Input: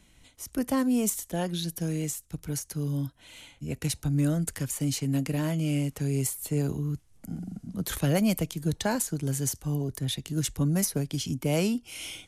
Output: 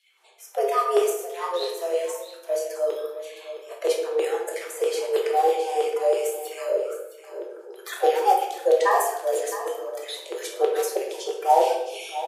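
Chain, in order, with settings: coarse spectral quantiser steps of 30 dB; LFO high-pass saw down 3.1 Hz 250–3200 Hz; high-pass 180 Hz 24 dB/octave; treble shelf 2.7 kHz -11 dB; delay 664 ms -12.5 dB; reverberation RT60 0.80 s, pre-delay 5 ms, DRR -0.5 dB; frequency shift +180 Hz; 8.91–9.41 s: treble shelf 9.8 kHz +8.5 dB; trim +3.5 dB

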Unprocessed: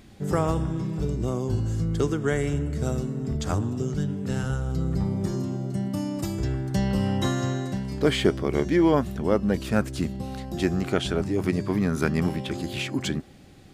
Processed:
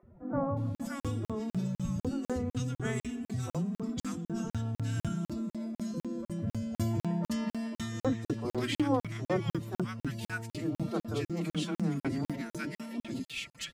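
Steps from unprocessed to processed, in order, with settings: formant-preserving pitch shift +9.5 st; three bands offset in time mids, lows, highs 30/570 ms, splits 360/1300 Hz; crackling interface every 0.25 s, samples 2048, zero, from 0.75 s; trim -5.5 dB

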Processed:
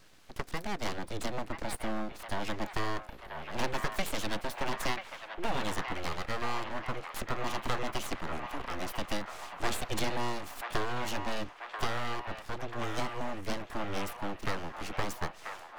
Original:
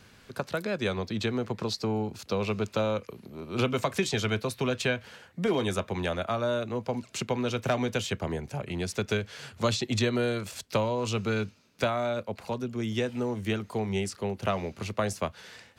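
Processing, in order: full-wave rectifier; feedback echo behind a band-pass 987 ms, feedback 63%, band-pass 1.4 kHz, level -4.5 dB; trim -2.5 dB

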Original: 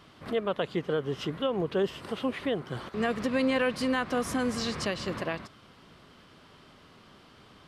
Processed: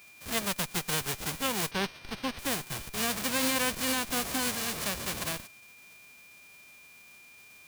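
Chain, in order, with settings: formants flattened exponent 0.1; whistle 2.4 kHz -49 dBFS; 1.71–2.39 s: Savitzky-Golay filter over 15 samples; in parallel at -7 dB: Schmitt trigger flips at -31.5 dBFS; on the sum: trim -3.5 dB

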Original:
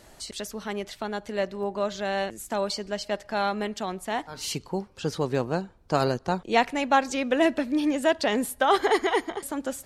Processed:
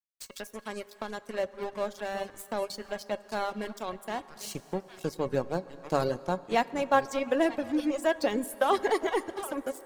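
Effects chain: chunks repeated in reverse 504 ms, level -12 dB; peaking EQ 3.1 kHz -6 dB 2.7 oct; hum notches 50/100/150/200 Hz; crossover distortion -39.5 dBFS; feedback comb 550 Hz, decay 0.17 s, harmonics all, mix 70%; reverb removal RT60 0.83 s; plate-style reverb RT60 3.8 s, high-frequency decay 0.55×, DRR 17 dB; tape noise reduction on one side only encoder only; trim +8 dB

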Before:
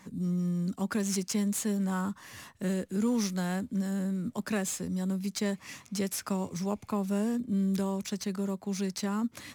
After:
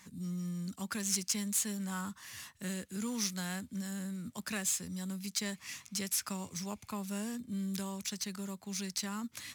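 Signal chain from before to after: amplifier tone stack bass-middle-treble 5-5-5; trim +8.5 dB

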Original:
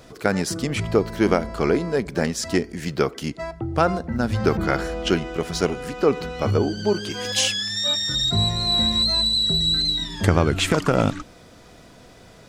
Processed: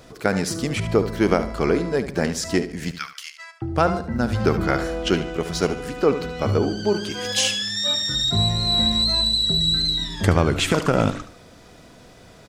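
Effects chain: 2.91–3.62 s: high-pass 1.4 kHz 24 dB/octave; on a send: feedback delay 73 ms, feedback 34%, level -12 dB

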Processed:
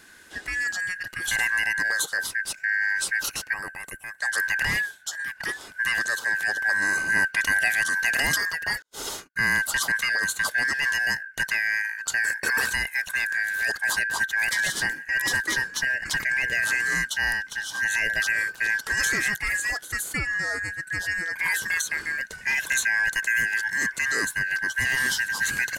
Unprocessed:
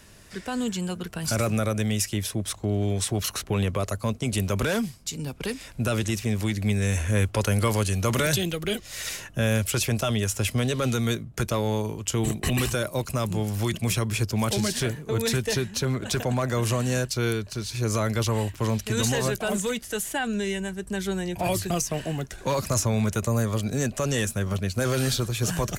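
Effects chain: four frequency bands reordered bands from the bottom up 2143; 3.53–4.18 s: time-frequency box 1.4–7.4 kHz -12 dB; 8.82–9.36 s: gate -36 dBFS, range -42 dB

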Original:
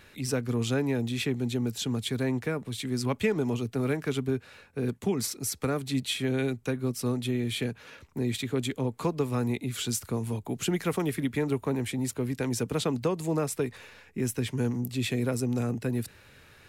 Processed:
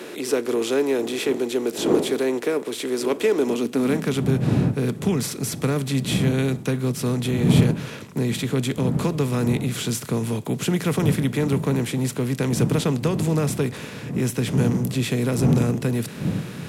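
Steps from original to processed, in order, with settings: spectral levelling over time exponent 0.6; wind noise 210 Hz -29 dBFS; high-pass sweep 360 Hz -> 140 Hz, 3.34–4.30 s; on a send: reverberation, pre-delay 3 ms, DRR 19 dB

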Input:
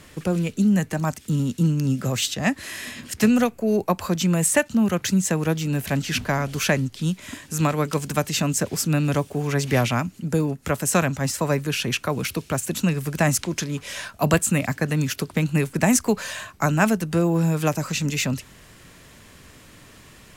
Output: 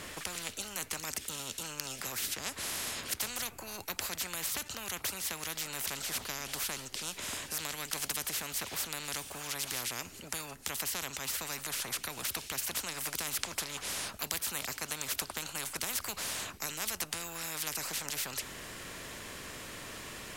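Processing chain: spectrum-flattening compressor 10:1; trim -7 dB

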